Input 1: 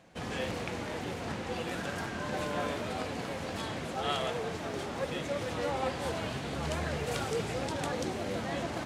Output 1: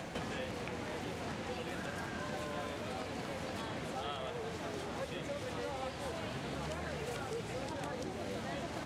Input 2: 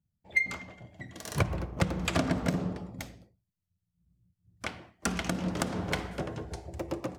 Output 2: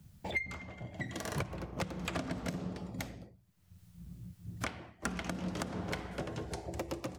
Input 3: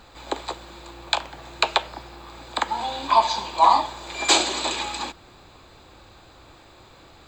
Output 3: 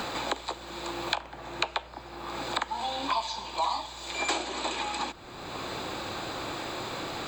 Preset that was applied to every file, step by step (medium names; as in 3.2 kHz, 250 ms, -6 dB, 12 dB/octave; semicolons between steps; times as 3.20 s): three bands compressed up and down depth 100%; trim -6.5 dB